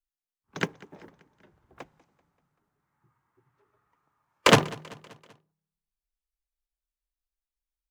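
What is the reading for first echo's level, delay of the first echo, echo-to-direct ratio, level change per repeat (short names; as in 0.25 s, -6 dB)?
-22.5 dB, 0.193 s, -21.0 dB, -5.5 dB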